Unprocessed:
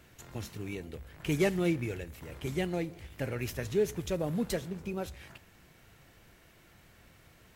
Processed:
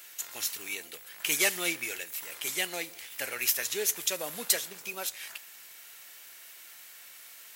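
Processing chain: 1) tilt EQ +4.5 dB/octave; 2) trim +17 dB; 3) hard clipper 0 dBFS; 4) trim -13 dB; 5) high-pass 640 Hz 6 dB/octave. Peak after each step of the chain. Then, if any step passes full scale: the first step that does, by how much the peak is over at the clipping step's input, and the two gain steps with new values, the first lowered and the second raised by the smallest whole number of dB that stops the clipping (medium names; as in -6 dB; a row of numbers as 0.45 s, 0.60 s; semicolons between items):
-10.5 dBFS, +6.5 dBFS, 0.0 dBFS, -13.0 dBFS, -12.0 dBFS; step 2, 6.5 dB; step 2 +10 dB, step 4 -6 dB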